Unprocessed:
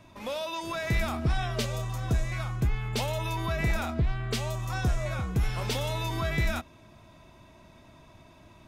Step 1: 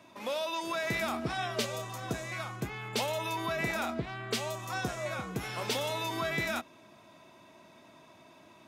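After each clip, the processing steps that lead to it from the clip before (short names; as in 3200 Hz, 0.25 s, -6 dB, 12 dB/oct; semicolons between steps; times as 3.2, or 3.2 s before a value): HPF 230 Hz 12 dB/oct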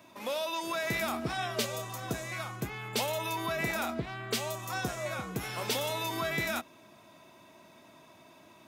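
high shelf 12000 Hz +12 dB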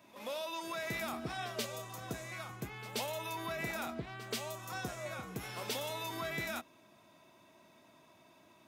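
pre-echo 0.13 s -16.5 dB; gain -6.5 dB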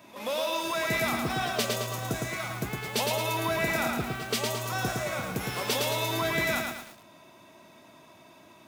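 lo-fi delay 0.11 s, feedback 55%, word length 9-bit, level -3 dB; gain +9 dB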